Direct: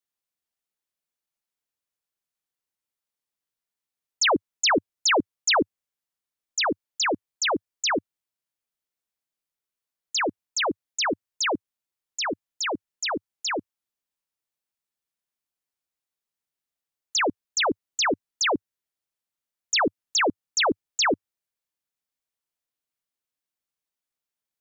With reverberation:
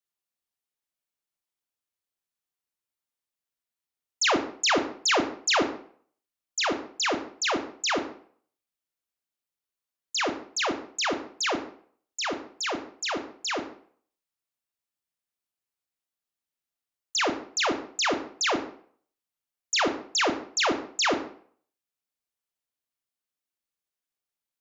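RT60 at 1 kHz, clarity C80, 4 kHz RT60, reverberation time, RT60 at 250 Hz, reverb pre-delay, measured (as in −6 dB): 0.55 s, 13.0 dB, 0.40 s, 0.55 s, 0.50 s, 22 ms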